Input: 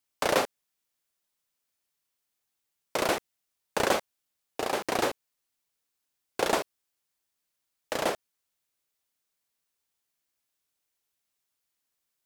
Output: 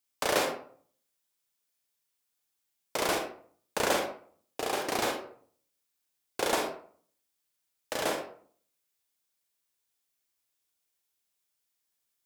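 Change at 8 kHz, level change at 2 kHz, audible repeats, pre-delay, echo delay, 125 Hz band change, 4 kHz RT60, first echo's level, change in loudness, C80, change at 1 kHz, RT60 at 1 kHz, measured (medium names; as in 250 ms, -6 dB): +1.0 dB, -1.0 dB, no echo, 36 ms, no echo, -3.0 dB, 0.30 s, no echo, -2.0 dB, 10.0 dB, -1.5 dB, 0.50 s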